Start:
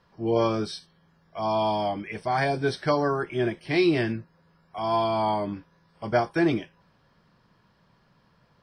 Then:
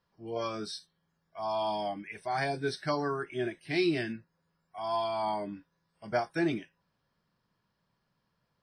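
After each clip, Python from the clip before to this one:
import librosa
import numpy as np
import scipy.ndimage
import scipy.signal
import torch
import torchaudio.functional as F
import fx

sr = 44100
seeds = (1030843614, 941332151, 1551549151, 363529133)

y = fx.noise_reduce_blind(x, sr, reduce_db=9)
y = fx.high_shelf(y, sr, hz=4300.0, db=6.5)
y = F.gain(torch.from_numpy(y), -6.5).numpy()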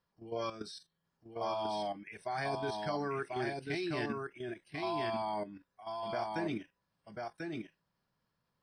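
y = fx.level_steps(x, sr, step_db=12)
y = y + 10.0 ** (-3.5 / 20.0) * np.pad(y, (int(1041 * sr / 1000.0), 0))[:len(y)]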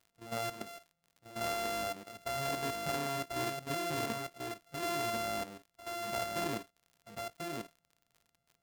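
y = np.r_[np.sort(x[:len(x) // 64 * 64].reshape(-1, 64), axis=1).ravel(), x[len(x) // 64 * 64:]]
y = fx.dmg_crackle(y, sr, seeds[0], per_s=55.0, level_db=-49.0)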